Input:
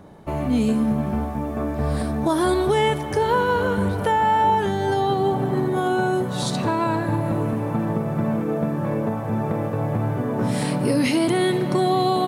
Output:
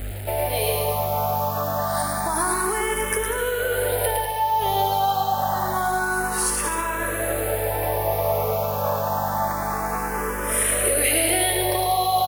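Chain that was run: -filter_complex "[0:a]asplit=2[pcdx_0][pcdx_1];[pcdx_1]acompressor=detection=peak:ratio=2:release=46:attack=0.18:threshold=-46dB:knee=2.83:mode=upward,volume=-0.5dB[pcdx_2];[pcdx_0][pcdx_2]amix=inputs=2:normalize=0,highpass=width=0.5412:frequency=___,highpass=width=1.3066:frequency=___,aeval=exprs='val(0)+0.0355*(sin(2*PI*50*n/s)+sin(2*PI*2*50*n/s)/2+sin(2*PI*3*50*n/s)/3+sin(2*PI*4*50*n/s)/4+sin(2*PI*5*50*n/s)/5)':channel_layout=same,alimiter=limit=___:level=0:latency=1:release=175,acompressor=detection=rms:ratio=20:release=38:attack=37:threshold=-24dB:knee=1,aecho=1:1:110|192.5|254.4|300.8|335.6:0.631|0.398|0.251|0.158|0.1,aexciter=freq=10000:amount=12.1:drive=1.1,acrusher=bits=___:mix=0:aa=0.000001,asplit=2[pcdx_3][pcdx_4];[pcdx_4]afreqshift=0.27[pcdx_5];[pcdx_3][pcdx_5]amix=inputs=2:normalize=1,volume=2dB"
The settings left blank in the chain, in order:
500, 500, -13dB, 5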